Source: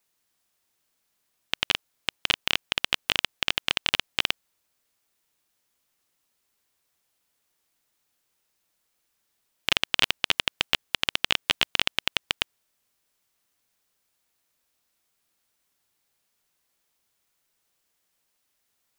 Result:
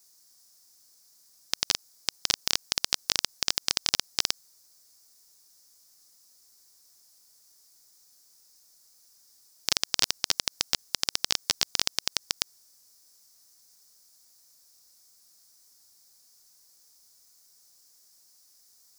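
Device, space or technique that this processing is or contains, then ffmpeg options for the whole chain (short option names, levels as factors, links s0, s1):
over-bright horn tweeter: -af "highshelf=f=3900:t=q:w=3:g=10,alimiter=limit=0.562:level=0:latency=1:release=53,volume=1.58"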